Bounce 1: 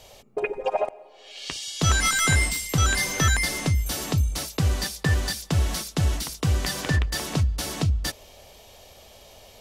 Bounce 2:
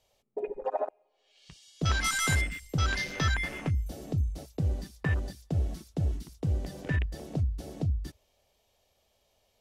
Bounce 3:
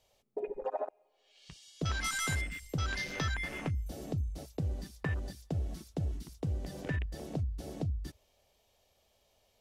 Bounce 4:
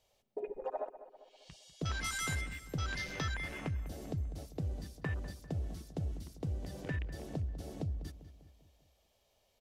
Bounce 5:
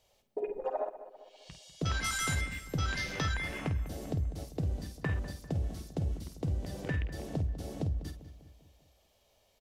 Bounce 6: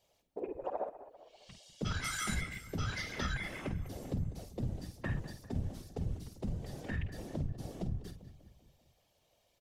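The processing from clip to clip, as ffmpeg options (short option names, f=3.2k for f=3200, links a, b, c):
-af "afwtdn=0.0316,volume=-6dB"
-af "acompressor=threshold=-35dB:ratio=2"
-filter_complex "[0:a]asplit=2[a][b];[b]adelay=198,lowpass=f=2.9k:p=1,volume=-13.5dB,asplit=2[c][d];[d]adelay=198,lowpass=f=2.9k:p=1,volume=0.52,asplit=2[e][f];[f]adelay=198,lowpass=f=2.9k:p=1,volume=0.52,asplit=2[g][h];[h]adelay=198,lowpass=f=2.9k:p=1,volume=0.52,asplit=2[i][j];[j]adelay=198,lowpass=f=2.9k:p=1,volume=0.52[k];[a][c][e][g][i][k]amix=inputs=6:normalize=0,volume=-3dB"
-filter_complex "[0:a]asplit=2[a][b];[b]adelay=50,volume=-10dB[c];[a][c]amix=inputs=2:normalize=0,volume=4dB"
-af "afftfilt=real='hypot(re,im)*cos(2*PI*random(0))':imag='hypot(re,im)*sin(2*PI*random(1))':win_size=512:overlap=0.75,volume=2dB"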